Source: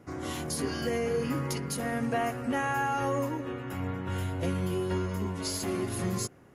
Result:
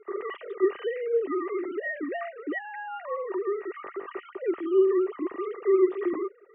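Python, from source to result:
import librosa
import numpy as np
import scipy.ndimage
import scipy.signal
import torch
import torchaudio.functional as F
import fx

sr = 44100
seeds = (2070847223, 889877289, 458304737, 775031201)

y = fx.sine_speech(x, sr)
y = fx.rider(y, sr, range_db=4, speed_s=0.5)
y = fx.small_body(y, sr, hz=(380.0, 1200.0, 1900.0), ring_ms=35, db=16)
y = y * 10.0 ** (-8.0 / 20.0)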